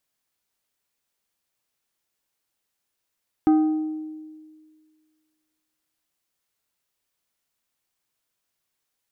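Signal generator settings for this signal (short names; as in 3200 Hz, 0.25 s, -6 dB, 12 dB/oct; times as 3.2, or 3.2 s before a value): glass hit plate, length 3.53 s, lowest mode 311 Hz, decay 1.83 s, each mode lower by 11 dB, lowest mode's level -12.5 dB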